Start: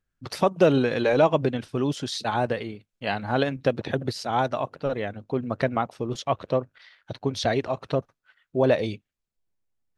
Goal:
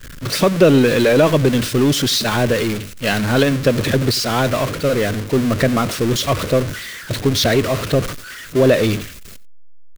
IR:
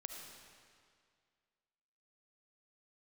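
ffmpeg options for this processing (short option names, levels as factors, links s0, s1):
-filter_complex "[0:a]aeval=exprs='val(0)+0.5*0.0473*sgn(val(0))':c=same,agate=range=0.0224:threshold=0.0447:ratio=3:detection=peak,equalizer=f=820:t=o:w=0.55:g=-12,asplit=2[s0][s1];[s1]asoftclip=type=hard:threshold=0.0596,volume=0.447[s2];[s0][s2]amix=inputs=2:normalize=0,aecho=1:1:90:0.0891,volume=2.11"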